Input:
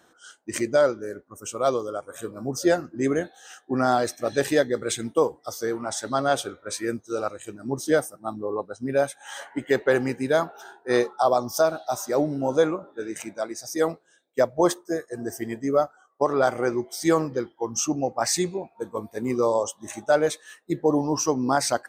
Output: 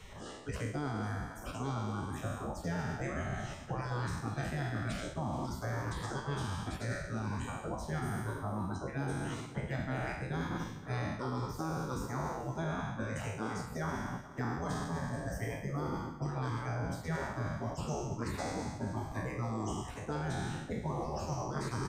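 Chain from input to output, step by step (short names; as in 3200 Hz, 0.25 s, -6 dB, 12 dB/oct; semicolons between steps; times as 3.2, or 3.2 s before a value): spectral trails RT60 1.02 s; notch 3500 Hz, Q 24; spectral gate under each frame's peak -15 dB weak; tilt -4.5 dB/oct; reverse; compressor, threshold -34 dBFS, peak gain reduction 14.5 dB; reverse; echo 0.425 s -22.5 dB; three-band squash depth 70%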